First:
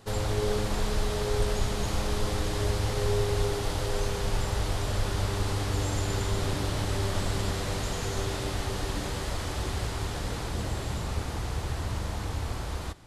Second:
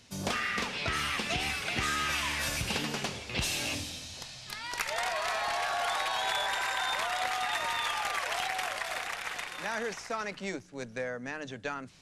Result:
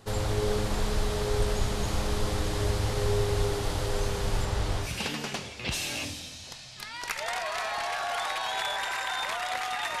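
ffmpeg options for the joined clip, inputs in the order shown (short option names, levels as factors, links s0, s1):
-filter_complex "[0:a]asettb=1/sr,asplit=3[s0][s1][s2];[s0]atrim=end=4.454[s3];[s1]atrim=start=4.45:end=4.93,asetpts=PTS-STARTPTS,afade=t=in:d=0.004:c=qsin,afade=t=out:st=0.476:d=0.004:c=qsin,highshelf=f=11000:g=-9.5[s4];[s2]atrim=start=4.926[s5];[s3][s4]acrossfade=d=0.004:c1=hsin:c2=qsin[s6];[s6][s5]acrossfade=d=0.004:c1=qsin:c2=hsin,apad=whole_dur=10,atrim=end=10,atrim=end=4.93,asetpts=PTS-STARTPTS[s7];[1:a]atrim=start=2.49:end=7.7,asetpts=PTS-STARTPTS[s8];[s7][s8]acrossfade=d=0.14:c1=tri:c2=tri"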